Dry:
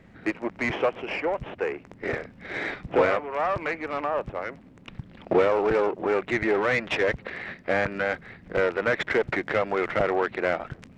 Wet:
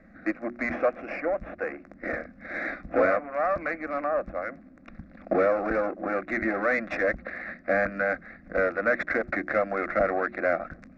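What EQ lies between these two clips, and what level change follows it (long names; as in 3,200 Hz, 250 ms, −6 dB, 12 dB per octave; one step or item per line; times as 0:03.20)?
high-frequency loss of the air 150 metres
mains-hum notches 60/120/180/240/300/360 Hz
phaser with its sweep stopped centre 620 Hz, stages 8
+2.5 dB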